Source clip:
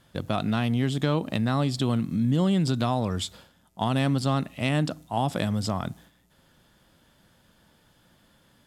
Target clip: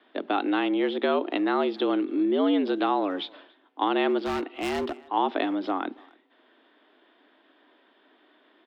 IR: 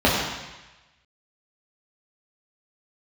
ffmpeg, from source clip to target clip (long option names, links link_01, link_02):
-filter_complex "[0:a]highpass=frequency=190:width_type=q:width=0.5412,highpass=frequency=190:width_type=q:width=1.307,lowpass=frequency=3400:width_type=q:width=0.5176,lowpass=frequency=3400:width_type=q:width=0.7071,lowpass=frequency=3400:width_type=q:width=1.932,afreqshift=91,asplit=2[link_01][link_02];[link_02]adelay=280,highpass=300,lowpass=3400,asoftclip=type=hard:threshold=-23dB,volume=-25dB[link_03];[link_01][link_03]amix=inputs=2:normalize=0,asplit=3[link_04][link_05][link_06];[link_04]afade=type=out:start_time=4.18:duration=0.02[link_07];[link_05]asoftclip=type=hard:threshold=-28dB,afade=type=in:start_time=4.18:duration=0.02,afade=type=out:start_time=5.04:duration=0.02[link_08];[link_06]afade=type=in:start_time=5.04:duration=0.02[link_09];[link_07][link_08][link_09]amix=inputs=3:normalize=0,volume=2.5dB"